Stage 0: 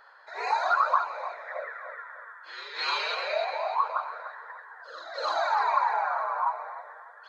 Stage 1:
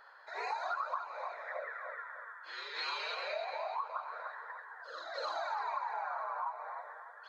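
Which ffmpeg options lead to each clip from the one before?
-af "acompressor=threshold=-34dB:ratio=3,volume=-3dB"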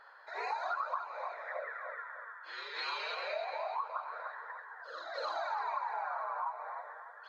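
-af "highshelf=f=6.5k:g=-8,volume=1dB"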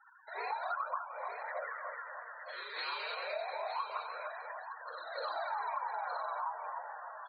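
-af "aecho=1:1:915|1830|2745:0.355|0.0603|0.0103,afftfilt=real='re*gte(hypot(re,im),0.00501)':imag='im*gte(hypot(re,im),0.00501)':win_size=1024:overlap=0.75,volume=-1dB"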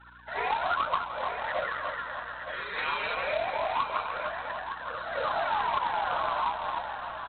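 -af "aresample=8000,acrusher=bits=2:mode=log:mix=0:aa=0.000001,aresample=44100,aeval=exprs='val(0)+0.000501*(sin(2*PI*60*n/s)+sin(2*PI*2*60*n/s)/2+sin(2*PI*3*60*n/s)/3+sin(2*PI*4*60*n/s)/4+sin(2*PI*5*60*n/s)/5)':c=same,volume=8.5dB"

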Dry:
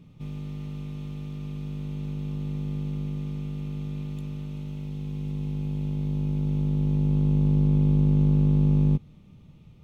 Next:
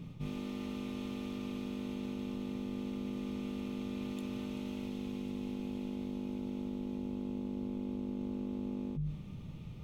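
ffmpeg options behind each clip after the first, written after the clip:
-af "bandreject=f=50:t=h:w=6,bandreject=f=100:t=h:w=6,bandreject=f=150:t=h:w=6,areverse,acompressor=threshold=-40dB:ratio=12,areverse,volume=5.5dB"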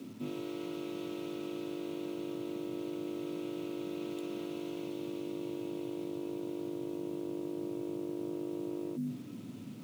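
-af "acrusher=bits=9:mix=0:aa=0.000001,afreqshift=99"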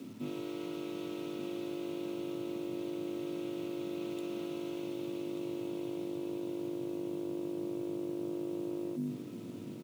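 -af "aecho=1:1:1186:0.299"

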